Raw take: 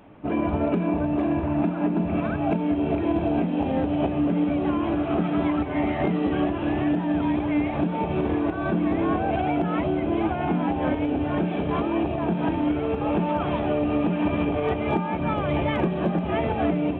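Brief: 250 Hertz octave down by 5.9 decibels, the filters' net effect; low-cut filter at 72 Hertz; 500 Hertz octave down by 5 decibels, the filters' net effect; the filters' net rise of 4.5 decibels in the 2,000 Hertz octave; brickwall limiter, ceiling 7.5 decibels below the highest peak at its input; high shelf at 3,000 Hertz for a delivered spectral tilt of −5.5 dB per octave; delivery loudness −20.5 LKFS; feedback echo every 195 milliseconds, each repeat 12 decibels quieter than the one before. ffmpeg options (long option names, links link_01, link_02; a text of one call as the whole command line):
ffmpeg -i in.wav -af "highpass=72,equalizer=frequency=250:width_type=o:gain=-6,equalizer=frequency=500:width_type=o:gain=-5.5,equalizer=frequency=2000:width_type=o:gain=8,highshelf=frequency=3000:gain=-5,alimiter=limit=-21.5dB:level=0:latency=1,aecho=1:1:195|390|585:0.251|0.0628|0.0157,volume=9.5dB" out.wav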